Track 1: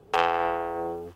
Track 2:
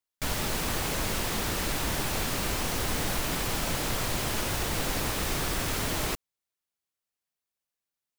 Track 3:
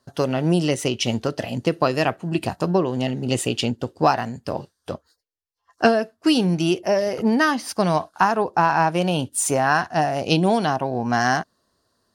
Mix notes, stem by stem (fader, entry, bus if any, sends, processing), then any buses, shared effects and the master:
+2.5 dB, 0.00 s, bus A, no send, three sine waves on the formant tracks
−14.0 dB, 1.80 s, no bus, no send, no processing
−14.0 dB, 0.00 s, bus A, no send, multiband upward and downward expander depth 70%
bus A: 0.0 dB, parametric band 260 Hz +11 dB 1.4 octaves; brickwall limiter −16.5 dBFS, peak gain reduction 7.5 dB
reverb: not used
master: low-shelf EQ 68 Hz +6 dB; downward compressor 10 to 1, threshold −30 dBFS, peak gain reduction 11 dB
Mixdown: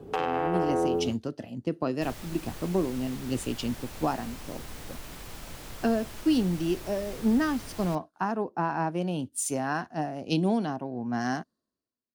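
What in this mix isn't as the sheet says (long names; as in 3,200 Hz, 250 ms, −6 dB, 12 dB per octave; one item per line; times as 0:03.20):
stem 1: missing three sine waves on the formant tracks
master: missing downward compressor 10 to 1, threshold −30 dBFS, peak gain reduction 11 dB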